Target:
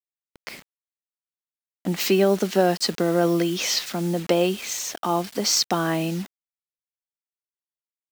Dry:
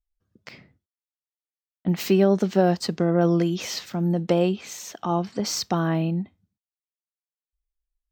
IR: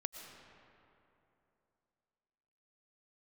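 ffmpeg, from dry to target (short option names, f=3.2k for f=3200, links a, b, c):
-filter_complex "[0:a]highpass=230,asplit=2[a][b];[b]acompressor=threshold=-35dB:ratio=5,volume=-0.5dB[c];[a][c]amix=inputs=2:normalize=0,acrusher=bits=6:mix=0:aa=0.000001,adynamicequalizer=threshold=0.0158:dfrequency=1600:dqfactor=0.7:tfrequency=1600:tqfactor=0.7:attack=5:release=100:ratio=0.375:range=2.5:mode=boostabove:tftype=highshelf"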